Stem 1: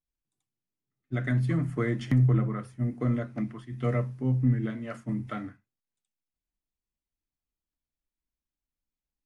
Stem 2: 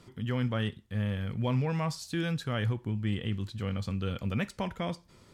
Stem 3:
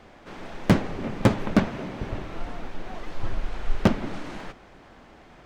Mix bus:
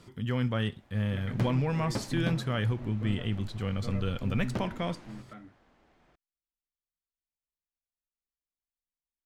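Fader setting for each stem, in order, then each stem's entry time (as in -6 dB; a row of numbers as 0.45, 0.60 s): -13.0, +1.0, -15.0 dB; 0.00, 0.00, 0.70 s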